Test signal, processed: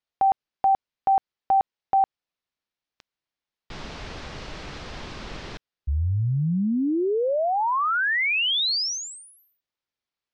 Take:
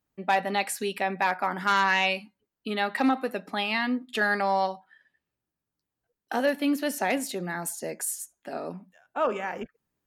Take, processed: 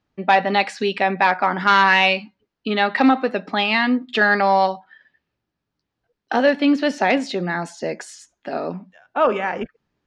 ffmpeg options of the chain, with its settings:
-af "lowpass=f=5.2k:w=0.5412,lowpass=f=5.2k:w=1.3066,aeval=exprs='0.237*(cos(1*acos(clip(val(0)/0.237,-1,1)))-cos(1*PI/2))+0.00188*(cos(5*acos(clip(val(0)/0.237,-1,1)))-cos(5*PI/2))':c=same,volume=8.5dB"

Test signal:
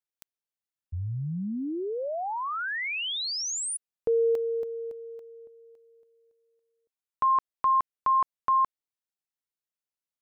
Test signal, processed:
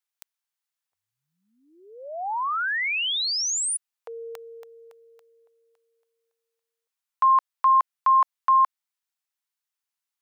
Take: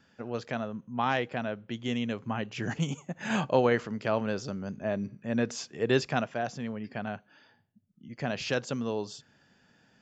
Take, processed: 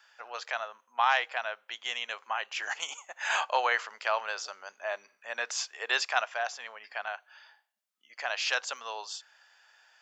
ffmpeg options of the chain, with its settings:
-af "highpass=f=800:w=0.5412,highpass=f=800:w=1.3066,volume=5.5dB"

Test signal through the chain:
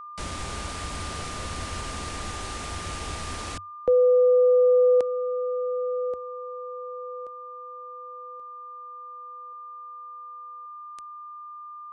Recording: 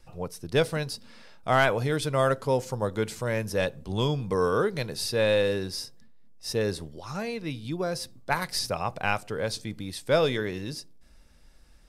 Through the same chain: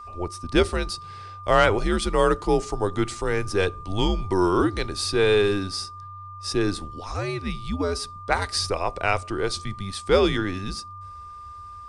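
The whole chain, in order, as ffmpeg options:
-af "aresample=22050,aresample=44100,afreqshift=-95,aeval=exprs='val(0)+0.00794*sin(2*PI*1200*n/s)':c=same,volume=4dB"

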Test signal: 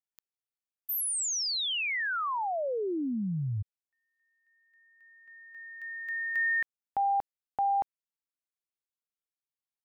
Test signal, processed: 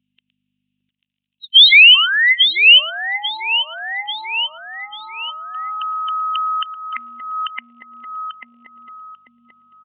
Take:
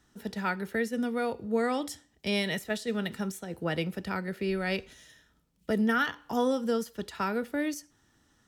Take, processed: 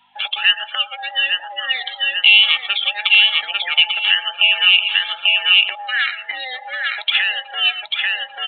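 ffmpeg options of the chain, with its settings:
-filter_complex "[0:a]afftfilt=real='real(if(between(b,1,1008),(2*floor((b-1)/48)+1)*48-b,b),0)':imag='imag(if(between(b,1,1008),(2*floor((b-1)/48)+1)*48-b,b),0)*if(between(b,1,1008),-1,1)':win_size=2048:overlap=0.75,asplit=2[a][b];[b]aecho=0:1:114:0.133[c];[a][c]amix=inputs=2:normalize=0,aeval=exprs='val(0)+0.00282*(sin(2*PI*50*n/s)+sin(2*PI*2*50*n/s)/2+sin(2*PI*3*50*n/s)/3+sin(2*PI*4*50*n/s)/4+sin(2*PI*5*50*n/s)/5)':c=same,acontrast=57,asplit=2[d][e];[e]aecho=0:1:841|1682|2523|3364:0.355|0.11|0.0341|0.0106[f];[d][f]amix=inputs=2:normalize=0,acompressor=threshold=-31dB:ratio=12:attack=0.15:release=276:knee=1:detection=rms,afftdn=nr=23:nf=-53,highpass=f=2.8k:t=q:w=5.9,aresample=8000,aresample=44100,alimiter=level_in=26.5dB:limit=-1dB:release=50:level=0:latency=1,volume=-1dB"

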